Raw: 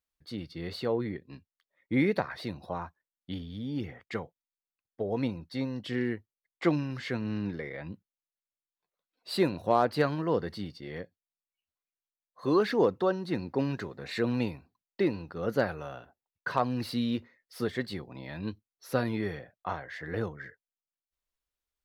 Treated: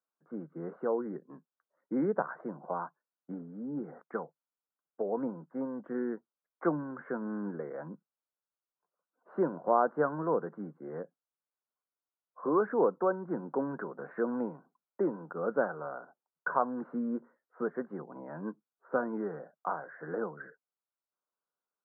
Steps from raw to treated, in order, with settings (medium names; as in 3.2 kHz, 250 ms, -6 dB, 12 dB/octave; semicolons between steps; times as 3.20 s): Chebyshev band-pass 150–1500 Hz, order 5; bass shelf 270 Hz -11.5 dB; in parallel at -2 dB: compression, threshold -39 dBFS, peak gain reduction 17 dB